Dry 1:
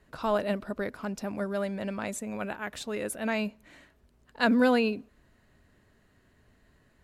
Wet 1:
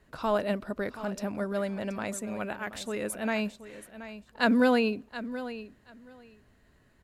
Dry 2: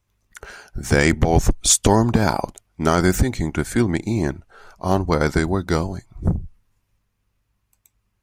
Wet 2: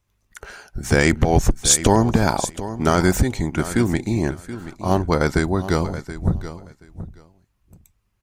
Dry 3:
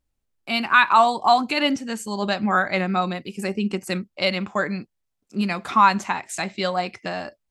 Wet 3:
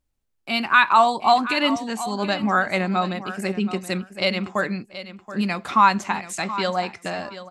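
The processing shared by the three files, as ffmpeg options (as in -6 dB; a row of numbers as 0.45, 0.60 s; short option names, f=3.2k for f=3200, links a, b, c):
-af "aecho=1:1:727|1454:0.211|0.0338"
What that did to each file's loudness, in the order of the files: -0.5, 0.0, 0.0 LU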